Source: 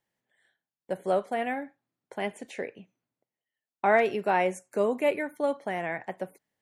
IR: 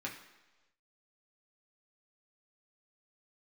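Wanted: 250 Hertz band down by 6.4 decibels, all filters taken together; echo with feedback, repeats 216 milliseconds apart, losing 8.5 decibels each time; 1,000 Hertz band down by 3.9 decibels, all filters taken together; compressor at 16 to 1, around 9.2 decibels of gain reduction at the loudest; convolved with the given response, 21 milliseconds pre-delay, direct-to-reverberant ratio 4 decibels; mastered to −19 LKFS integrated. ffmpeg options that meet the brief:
-filter_complex "[0:a]equalizer=frequency=250:width_type=o:gain=-8.5,equalizer=frequency=1000:width_type=o:gain=-5,acompressor=threshold=-28dB:ratio=16,aecho=1:1:216|432|648|864:0.376|0.143|0.0543|0.0206,asplit=2[link_01][link_02];[1:a]atrim=start_sample=2205,adelay=21[link_03];[link_02][link_03]afir=irnorm=-1:irlink=0,volume=-5.5dB[link_04];[link_01][link_04]amix=inputs=2:normalize=0,volume=15.5dB"

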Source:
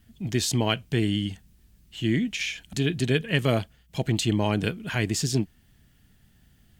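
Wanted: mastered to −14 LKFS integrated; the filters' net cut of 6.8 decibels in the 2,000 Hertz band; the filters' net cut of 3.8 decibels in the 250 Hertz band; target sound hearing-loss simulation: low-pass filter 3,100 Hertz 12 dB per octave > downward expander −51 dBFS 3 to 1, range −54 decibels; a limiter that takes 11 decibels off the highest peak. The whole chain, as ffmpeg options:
ffmpeg -i in.wav -af "equalizer=frequency=250:width_type=o:gain=-5,equalizer=frequency=2000:width_type=o:gain=-7.5,alimiter=limit=-22.5dB:level=0:latency=1,lowpass=3100,agate=range=-54dB:threshold=-51dB:ratio=3,volume=21dB" out.wav

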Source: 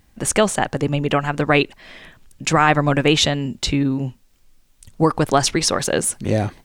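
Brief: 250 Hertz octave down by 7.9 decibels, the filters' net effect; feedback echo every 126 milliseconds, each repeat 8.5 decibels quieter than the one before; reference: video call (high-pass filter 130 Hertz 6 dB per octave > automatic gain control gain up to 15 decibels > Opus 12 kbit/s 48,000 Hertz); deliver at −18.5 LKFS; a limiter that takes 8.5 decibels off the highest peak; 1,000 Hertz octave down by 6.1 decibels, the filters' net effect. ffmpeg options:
ffmpeg -i in.wav -af "equalizer=frequency=250:width_type=o:gain=-9,equalizer=frequency=1000:width_type=o:gain=-8,alimiter=limit=-13dB:level=0:latency=1,highpass=frequency=130:poles=1,aecho=1:1:126|252|378|504:0.376|0.143|0.0543|0.0206,dynaudnorm=maxgain=15dB,volume=7.5dB" -ar 48000 -c:a libopus -b:a 12k out.opus

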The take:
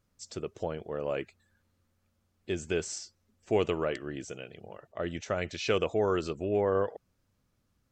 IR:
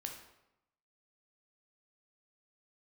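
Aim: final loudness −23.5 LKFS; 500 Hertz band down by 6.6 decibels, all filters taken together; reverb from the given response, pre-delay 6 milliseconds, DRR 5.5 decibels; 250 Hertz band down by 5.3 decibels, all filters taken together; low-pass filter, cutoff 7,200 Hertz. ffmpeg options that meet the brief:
-filter_complex "[0:a]lowpass=7200,equalizer=frequency=250:width_type=o:gain=-5,equalizer=frequency=500:width_type=o:gain=-6.5,asplit=2[link_01][link_02];[1:a]atrim=start_sample=2205,adelay=6[link_03];[link_02][link_03]afir=irnorm=-1:irlink=0,volume=-3.5dB[link_04];[link_01][link_04]amix=inputs=2:normalize=0,volume=12.5dB"

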